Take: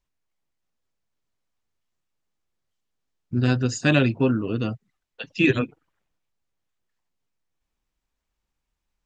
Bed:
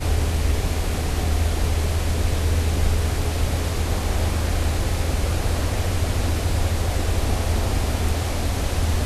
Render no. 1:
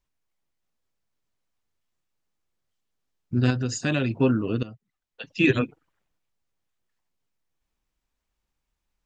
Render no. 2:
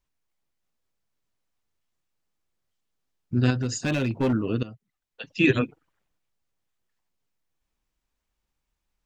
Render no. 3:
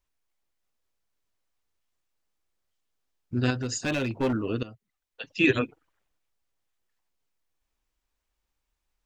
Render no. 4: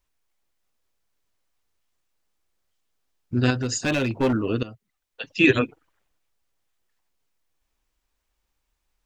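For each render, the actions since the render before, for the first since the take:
3.5–4.11 compressor 2:1, threshold -24 dBFS; 4.63–5.56 fade in, from -16.5 dB
3.61–4.33 hard clip -19 dBFS
bell 160 Hz -7 dB 1.3 oct
gain +4.5 dB

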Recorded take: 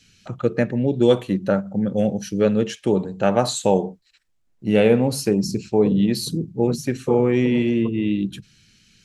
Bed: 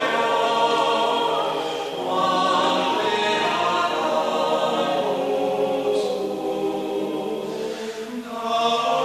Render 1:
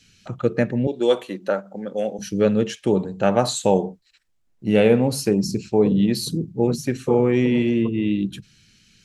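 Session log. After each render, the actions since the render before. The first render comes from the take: 0.87–2.19 HPF 400 Hz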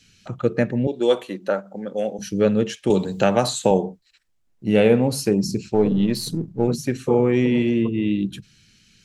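2.9–3.71 three-band squash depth 70%; 5.74–6.68 half-wave gain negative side -3 dB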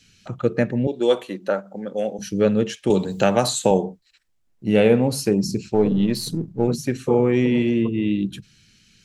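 3.1–3.85 high shelf 6700 Hz +5.5 dB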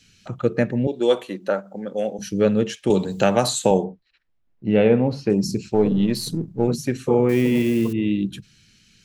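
3.84–5.3 air absorption 250 m; 7.29–7.93 switching spikes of -26.5 dBFS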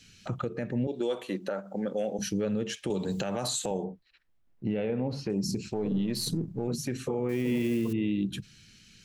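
compressor 6:1, threshold -23 dBFS, peak gain reduction 11.5 dB; limiter -21 dBFS, peak gain reduction 10.5 dB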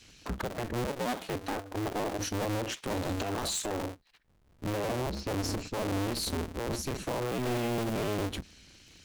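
cycle switcher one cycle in 2, inverted; hard clip -28 dBFS, distortion -11 dB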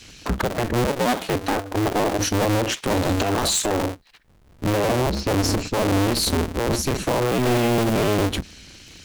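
gain +11.5 dB

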